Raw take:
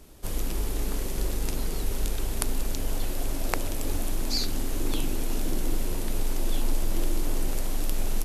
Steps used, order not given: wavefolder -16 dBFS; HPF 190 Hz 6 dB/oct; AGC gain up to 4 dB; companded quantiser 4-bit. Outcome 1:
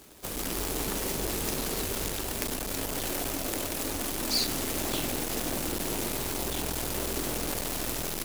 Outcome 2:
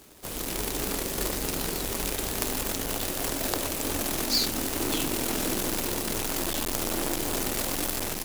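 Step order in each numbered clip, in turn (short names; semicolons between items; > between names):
AGC > companded quantiser > wavefolder > HPF; companded quantiser > HPF > wavefolder > AGC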